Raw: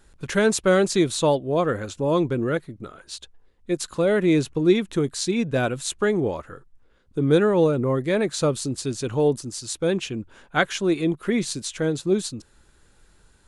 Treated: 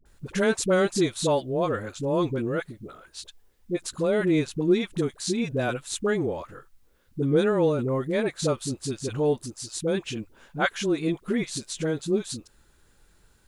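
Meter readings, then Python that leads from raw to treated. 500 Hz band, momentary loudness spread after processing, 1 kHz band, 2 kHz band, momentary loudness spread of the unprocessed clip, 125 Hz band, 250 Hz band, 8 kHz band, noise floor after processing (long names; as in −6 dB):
−3.5 dB, 14 LU, −3.5 dB, −3.5 dB, 12 LU, −3.5 dB, −3.5 dB, −3.5 dB, −61 dBFS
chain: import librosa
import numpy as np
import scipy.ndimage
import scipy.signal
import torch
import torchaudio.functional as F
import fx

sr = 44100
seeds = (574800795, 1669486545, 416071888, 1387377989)

y = fx.quant_dither(x, sr, seeds[0], bits=12, dither='triangular')
y = fx.dispersion(y, sr, late='highs', ms=56.0, hz=560.0)
y = F.gain(torch.from_numpy(y), -3.5).numpy()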